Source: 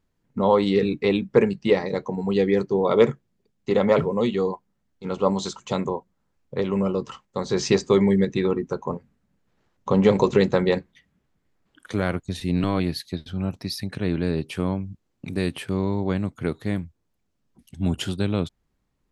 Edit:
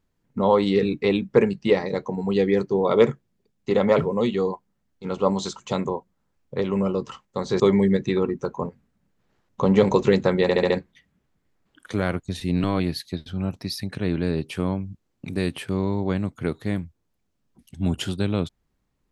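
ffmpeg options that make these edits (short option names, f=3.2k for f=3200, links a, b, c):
-filter_complex "[0:a]asplit=6[a][b][c][d][e][f];[a]atrim=end=7.602[g];[b]atrim=start=7.878:end=10.772[h];[c]atrim=start=10.698:end=10.772[i];[d]atrim=start=10.698:end=10.772[j];[e]atrim=start=10.698:end=10.772[k];[f]atrim=start=10.698[l];[g][h]acrossfade=d=0.004:c1=hsin:c2=hsin[m];[m][i]acrossfade=d=0.004:c1=hsin:c2=hsin[n];[n][j]acrossfade=d=0.004:c1=hsin:c2=hsin[o];[o][k]acrossfade=d=0.004:c1=hsin:c2=hsin[p];[p][l]acrossfade=d=0.004:c1=hsin:c2=hsin"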